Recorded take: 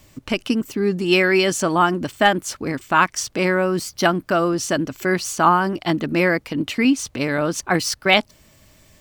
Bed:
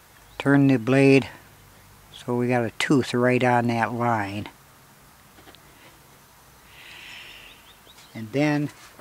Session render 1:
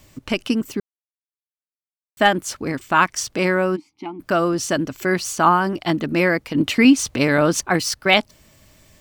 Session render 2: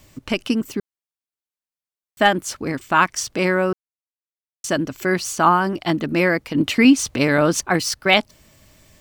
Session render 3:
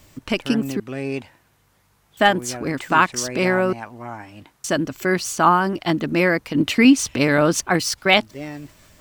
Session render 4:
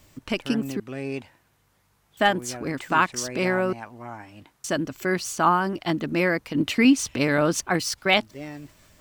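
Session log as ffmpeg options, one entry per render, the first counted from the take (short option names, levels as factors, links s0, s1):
-filter_complex "[0:a]asplit=3[s0][s1][s2];[s0]afade=t=out:st=3.75:d=0.02[s3];[s1]asplit=3[s4][s5][s6];[s4]bandpass=f=300:t=q:w=8,volume=1[s7];[s5]bandpass=f=870:t=q:w=8,volume=0.501[s8];[s6]bandpass=f=2240:t=q:w=8,volume=0.355[s9];[s7][s8][s9]amix=inputs=3:normalize=0,afade=t=in:st=3.75:d=0.02,afade=t=out:st=4.19:d=0.02[s10];[s2]afade=t=in:st=4.19:d=0.02[s11];[s3][s10][s11]amix=inputs=3:normalize=0,asplit=5[s12][s13][s14][s15][s16];[s12]atrim=end=0.8,asetpts=PTS-STARTPTS,afade=t=out:st=0.796:d=0.004:c=hsin[s17];[s13]atrim=start=0.8:end=2.17,asetpts=PTS-STARTPTS,volume=0[s18];[s14]atrim=start=2.17:end=6.552,asetpts=PTS-STARTPTS,afade=t=in:d=0.004:c=hsin[s19];[s15]atrim=start=6.548:end=7.632,asetpts=PTS-STARTPTS,volume=1.68[s20];[s16]atrim=start=7.628[s21];[s17][s18][s19]concat=n=3:v=0:a=1[s22];[s22][s20]acrossfade=d=0.004:c1=hsin:c2=hsin[s23];[s23][s21]acrossfade=d=0.004:c1=hsin:c2=hsin"
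-filter_complex "[0:a]asplit=3[s0][s1][s2];[s0]atrim=end=3.73,asetpts=PTS-STARTPTS,afade=t=out:st=3.726:d=0.004:c=hsin[s3];[s1]atrim=start=3.73:end=4.64,asetpts=PTS-STARTPTS,volume=0[s4];[s2]atrim=start=4.64,asetpts=PTS-STARTPTS,afade=t=in:d=0.004:c=hsin[s5];[s3][s4][s5]concat=n=3:v=0:a=1"
-filter_complex "[1:a]volume=0.282[s0];[0:a][s0]amix=inputs=2:normalize=0"
-af "volume=0.596"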